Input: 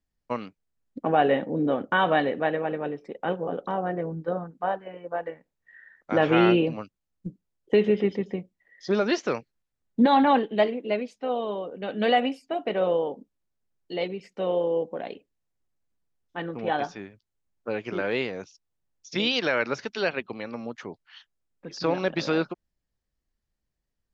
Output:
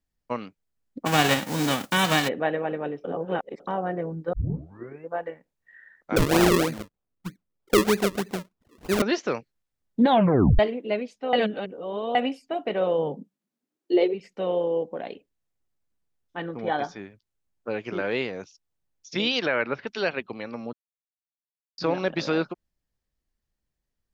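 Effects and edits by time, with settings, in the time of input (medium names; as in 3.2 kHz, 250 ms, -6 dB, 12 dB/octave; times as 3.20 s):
1.05–2.27 s: formants flattened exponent 0.3
3.04–3.60 s: reverse
4.33 s: tape start 0.77 s
6.16–9.02 s: decimation with a swept rate 40× 3.2 Hz
10.09 s: tape stop 0.50 s
11.33–12.15 s: reverse
12.97–14.13 s: resonant high-pass 130 Hz -> 420 Hz, resonance Q 5.7
16.54–16.98 s: Butterworth band-stop 2.7 kHz, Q 6
19.46–19.87 s: low-pass 3.2 kHz 24 dB/octave
20.73–21.78 s: mute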